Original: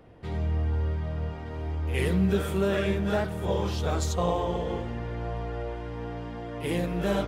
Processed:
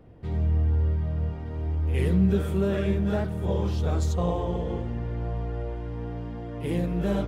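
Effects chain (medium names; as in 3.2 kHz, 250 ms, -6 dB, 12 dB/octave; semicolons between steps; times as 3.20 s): bass shelf 430 Hz +10.5 dB; trim -6 dB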